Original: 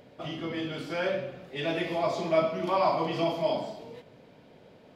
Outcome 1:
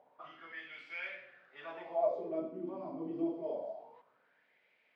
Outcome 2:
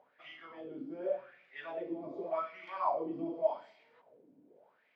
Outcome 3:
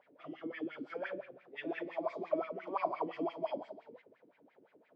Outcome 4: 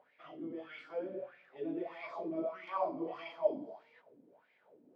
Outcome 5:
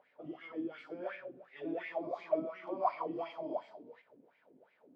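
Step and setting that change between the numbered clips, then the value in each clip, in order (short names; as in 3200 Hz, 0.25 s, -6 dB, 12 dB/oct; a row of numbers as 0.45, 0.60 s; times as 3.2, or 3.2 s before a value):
wah, rate: 0.26, 0.86, 5.8, 1.6, 2.8 Hz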